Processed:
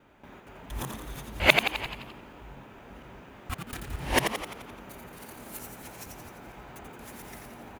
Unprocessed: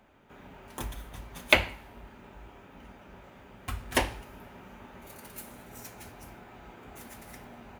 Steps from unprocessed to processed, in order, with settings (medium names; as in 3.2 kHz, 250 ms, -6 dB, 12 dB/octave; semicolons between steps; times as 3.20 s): time reversed locally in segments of 233 ms; frequency-shifting echo 86 ms, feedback 57%, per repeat +83 Hz, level -6 dB; trim +1.5 dB